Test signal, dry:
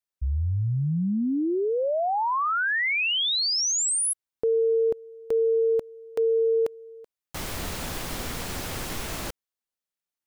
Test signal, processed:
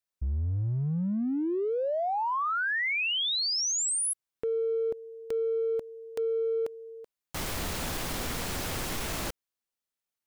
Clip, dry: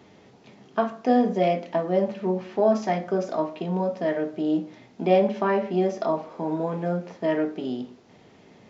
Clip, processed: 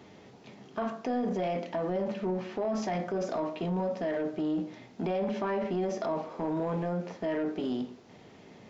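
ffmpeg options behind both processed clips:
ffmpeg -i in.wav -af "acompressor=threshold=-27dB:ratio=6:attack=0.4:release=21:knee=1:detection=peak" out.wav

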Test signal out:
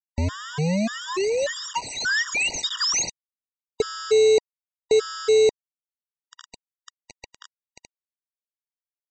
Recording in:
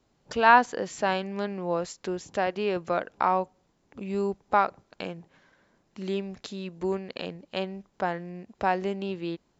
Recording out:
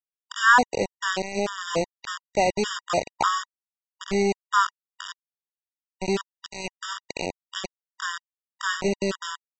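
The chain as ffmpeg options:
ffmpeg -i in.wav -af "aresample=16000,acrusher=bits=4:mix=0:aa=0.000001,aresample=44100,afftfilt=real='re*gt(sin(2*PI*1.7*pts/sr)*(1-2*mod(floor(b*sr/1024/950),2)),0)':imag='im*gt(sin(2*PI*1.7*pts/sr)*(1-2*mod(floor(b*sr/1024/950),2)),0)':win_size=1024:overlap=0.75,volume=5.5dB" out.wav

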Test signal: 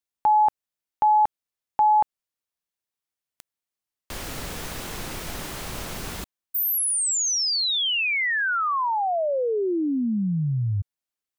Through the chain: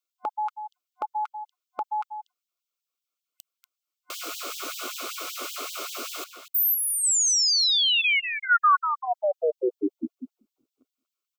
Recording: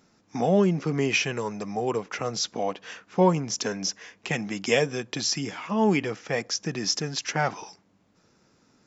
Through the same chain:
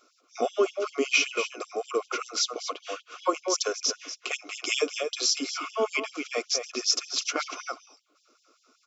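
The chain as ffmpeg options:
ffmpeg -i in.wav -filter_complex "[0:a]superequalizer=9b=0.282:10b=1.78:11b=0.251:16b=0.562,asplit=2[link_01][link_02];[link_02]adelay=239.1,volume=-8dB,highshelf=frequency=4000:gain=-5.38[link_03];[link_01][link_03]amix=inputs=2:normalize=0,afftfilt=real='re*gte(b*sr/1024,230*pow(3000/230,0.5+0.5*sin(2*PI*5.2*pts/sr)))':imag='im*gte(b*sr/1024,230*pow(3000/230,0.5+0.5*sin(2*PI*5.2*pts/sr)))':win_size=1024:overlap=0.75,volume=2dB" out.wav

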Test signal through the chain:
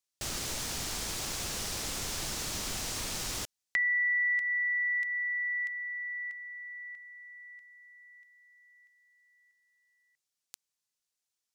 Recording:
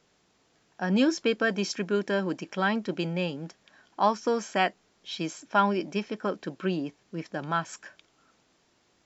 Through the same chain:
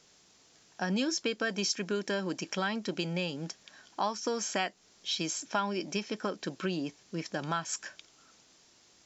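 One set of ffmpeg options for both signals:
ffmpeg -i in.wav -af "equalizer=frequency=6200:width=0.63:gain=11,acompressor=threshold=-30dB:ratio=3" out.wav

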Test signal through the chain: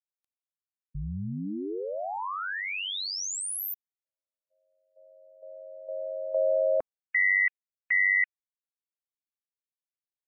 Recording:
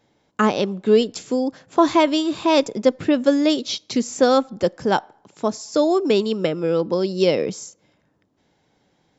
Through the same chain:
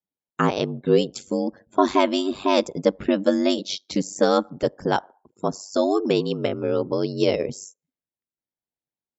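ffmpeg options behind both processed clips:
ffmpeg -i in.wav -af "aeval=exprs='val(0)*sin(2*PI*48*n/s)':channel_layout=same,afftdn=noise_reduction=33:noise_floor=-47" out.wav

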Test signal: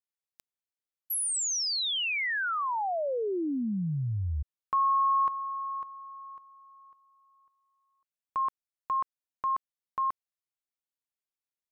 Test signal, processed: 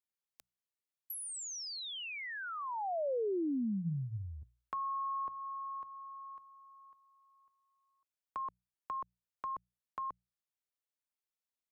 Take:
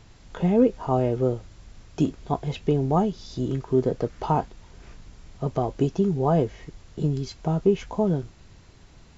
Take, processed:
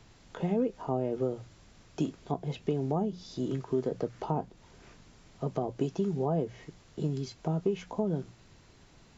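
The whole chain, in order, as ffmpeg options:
ffmpeg -i in.wav -filter_complex "[0:a]bandreject=frequency=60:width_type=h:width=6,bandreject=frequency=120:width_type=h:width=6,bandreject=frequency=180:width_type=h:width=6,acrossover=split=110|720[link_01][link_02][link_03];[link_01]acompressor=threshold=-57dB:ratio=4[link_04];[link_02]acompressor=threshold=-23dB:ratio=4[link_05];[link_03]acompressor=threshold=-40dB:ratio=4[link_06];[link_04][link_05][link_06]amix=inputs=3:normalize=0,volume=-3.5dB" out.wav

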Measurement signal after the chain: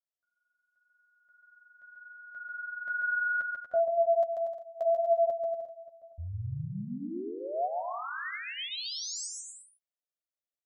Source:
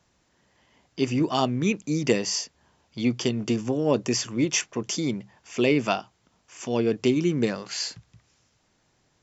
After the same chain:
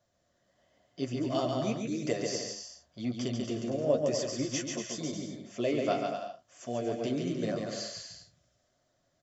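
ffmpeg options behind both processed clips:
ffmpeg -i in.wav -af "superequalizer=8b=3.16:9b=0.562:12b=0.562:16b=0.282,flanger=delay=6.6:depth=8.6:regen=-13:speed=0.9:shape=triangular,aecho=1:1:140|238|306.6|354.6|388.2:0.631|0.398|0.251|0.158|0.1,volume=-7dB" out.wav

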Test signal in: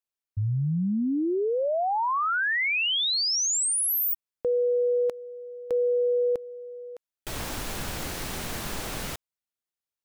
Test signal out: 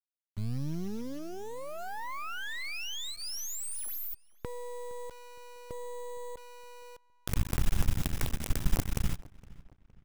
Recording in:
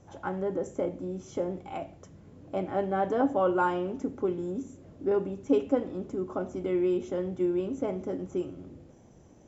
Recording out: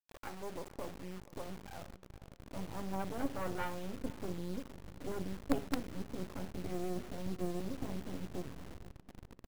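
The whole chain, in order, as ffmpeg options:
ffmpeg -i in.wav -filter_complex "[0:a]bandreject=frequency=4300:width=10,anlmdn=1.58,asubboost=boost=9.5:cutoff=150,acompressor=mode=upward:threshold=-35dB:ratio=2.5:attack=8.1:release=27:knee=2.83:detection=peak,aeval=exprs='0.422*(cos(1*acos(clip(val(0)/0.422,-1,1)))-cos(1*PI/2))+0.133*(cos(2*acos(clip(val(0)/0.422,-1,1)))-cos(2*PI/2))+0.0133*(cos(3*acos(clip(val(0)/0.422,-1,1)))-cos(3*PI/2))+0.00944*(cos(6*acos(clip(val(0)/0.422,-1,1)))-cos(6*PI/2))+0.00841*(cos(8*acos(clip(val(0)/0.422,-1,1)))-cos(8*PI/2))':channel_layout=same,acrusher=bits=4:dc=4:mix=0:aa=0.000001,asplit=2[link_01][link_02];[link_02]adelay=464,lowpass=frequency=3100:poles=1,volume=-21dB,asplit=2[link_03][link_04];[link_04]adelay=464,lowpass=frequency=3100:poles=1,volume=0.43,asplit=2[link_05][link_06];[link_06]adelay=464,lowpass=frequency=3100:poles=1,volume=0.43[link_07];[link_03][link_05][link_07]amix=inputs=3:normalize=0[link_08];[link_01][link_08]amix=inputs=2:normalize=0,volume=-7.5dB" out.wav

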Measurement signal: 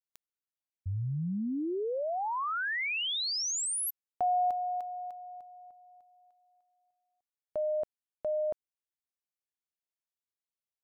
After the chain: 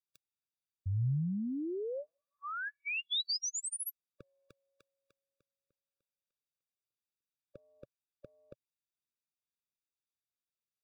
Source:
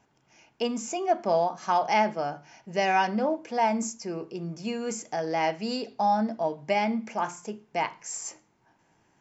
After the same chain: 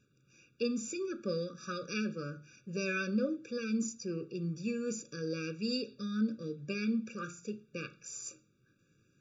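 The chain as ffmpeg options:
ffmpeg -i in.wav -af "equalizer=frequency=125:width_type=o:width=1:gain=7,equalizer=frequency=1000:width_type=o:width=1:gain=-4,equalizer=frequency=4000:width_type=o:width=1:gain=6,afftfilt=real='re*eq(mod(floor(b*sr/1024/560),2),0)':imag='im*eq(mod(floor(b*sr/1024/560),2),0)':win_size=1024:overlap=0.75,volume=-4.5dB" out.wav

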